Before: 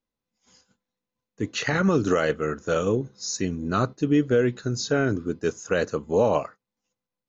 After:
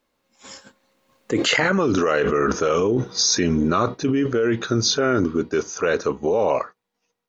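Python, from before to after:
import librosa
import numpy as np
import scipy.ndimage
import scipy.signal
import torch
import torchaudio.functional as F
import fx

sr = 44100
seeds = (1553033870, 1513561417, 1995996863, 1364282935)

y = fx.doppler_pass(x, sr, speed_mps=20, closest_m=2.0, pass_at_s=1.77)
y = fx.bass_treble(y, sr, bass_db=-10, treble_db=-6)
y = fx.env_flatten(y, sr, amount_pct=100)
y = F.gain(torch.from_numpy(y), 4.0).numpy()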